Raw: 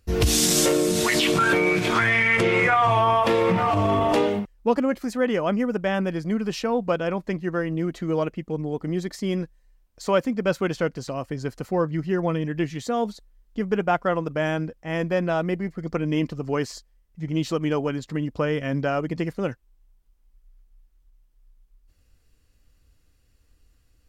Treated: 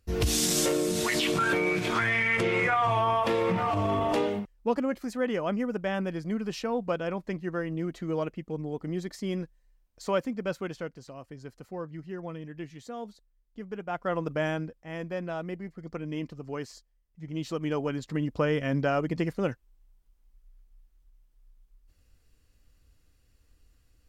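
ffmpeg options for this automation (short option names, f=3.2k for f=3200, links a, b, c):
-af "volume=13.5dB,afade=t=out:st=10.08:d=0.92:silence=0.398107,afade=t=in:st=13.87:d=0.42:silence=0.281838,afade=t=out:st=14.29:d=0.61:silence=0.421697,afade=t=in:st=17.26:d=1.05:silence=0.375837"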